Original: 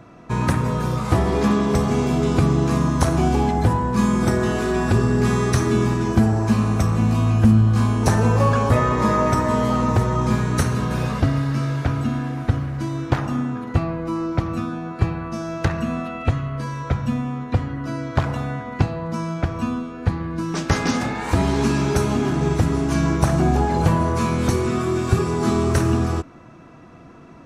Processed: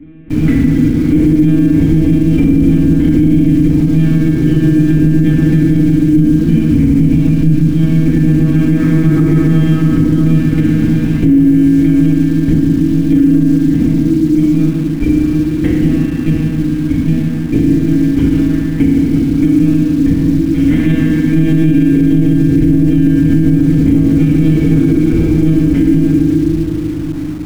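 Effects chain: reverb removal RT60 0.68 s; vowel filter i; tilt EQ -3.5 dB/octave; on a send: feedback echo behind a low-pass 558 ms, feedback 56%, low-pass 1.5 kHz, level -11 dB; on the sum: monotone LPC vocoder at 8 kHz 160 Hz; FDN reverb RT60 2.3 s, low-frequency decay 1.45×, high-frequency decay 0.85×, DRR -6 dB; in parallel at -10 dB: bit crusher 6-bit; on the sum: loudness maximiser +11 dB; trim -1 dB

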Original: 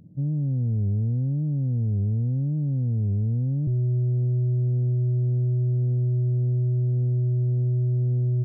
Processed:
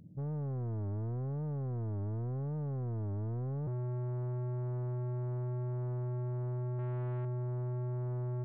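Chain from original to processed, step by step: 6.74–7.25 s: doubling 49 ms -3 dB; saturation -30.5 dBFS, distortion -10 dB; trim -4.5 dB

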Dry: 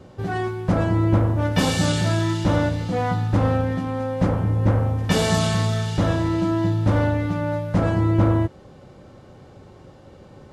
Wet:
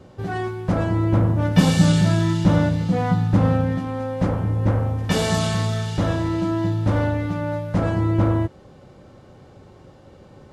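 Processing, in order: 1.17–3.78 s: peaking EQ 170 Hz +10 dB 0.69 oct; trim -1 dB

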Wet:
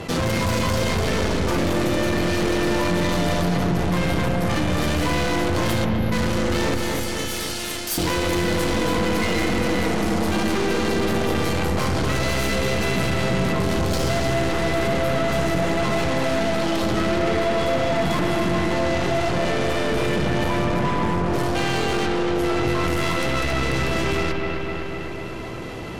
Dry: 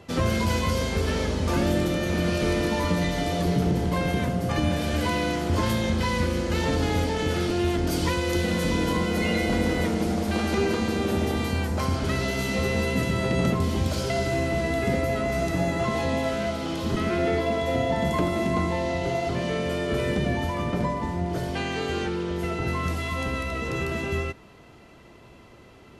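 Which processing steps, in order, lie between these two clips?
5.85–6.13 s: time-frequency box 240–11000 Hz -28 dB; 6.74–7.98 s: differentiator; in parallel at +2 dB: peak limiter -21 dBFS, peak gain reduction 8.5 dB; on the sum: Chebyshev shaper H 5 -12 dB, 7 -15 dB, 8 -14 dB, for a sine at -8.5 dBFS; saturation -14.5 dBFS, distortion -14 dB; on a send: feedback echo behind a low-pass 254 ms, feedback 55%, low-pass 3.1 kHz, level -6 dB; on the sum: simulated room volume 2500 m³, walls furnished, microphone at 0.63 m; level flattener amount 50%; trim -4.5 dB

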